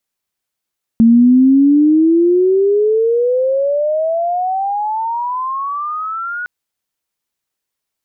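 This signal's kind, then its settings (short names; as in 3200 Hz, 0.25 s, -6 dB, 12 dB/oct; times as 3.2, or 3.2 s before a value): gliding synth tone sine, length 5.46 s, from 225 Hz, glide +32.5 st, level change -15.5 dB, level -4.5 dB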